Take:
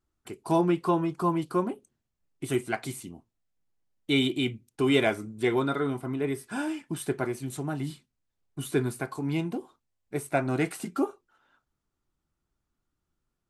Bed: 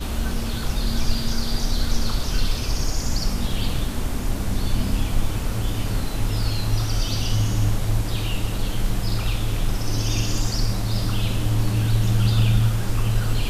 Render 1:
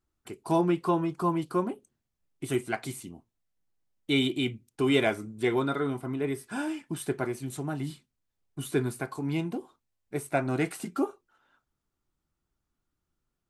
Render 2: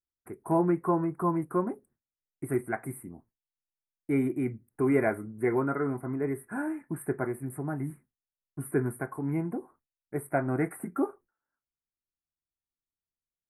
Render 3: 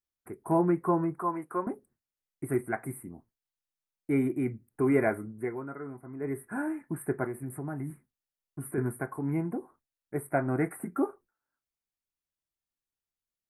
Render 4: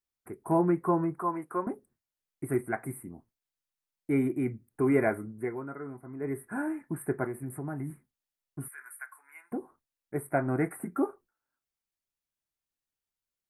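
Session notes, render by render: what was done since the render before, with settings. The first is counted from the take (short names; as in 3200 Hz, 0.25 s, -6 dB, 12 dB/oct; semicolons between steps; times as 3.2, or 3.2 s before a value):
gain -1 dB
elliptic band-stop 1900–9600 Hz, stop band 40 dB; gate with hold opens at -56 dBFS
1.19–1.67 weighting filter A; 5.29–6.37 dip -10.5 dB, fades 0.24 s; 7.24–8.78 compressor 2:1, threshold -33 dBFS
8.68–9.52 Chebyshev high-pass 1500 Hz, order 3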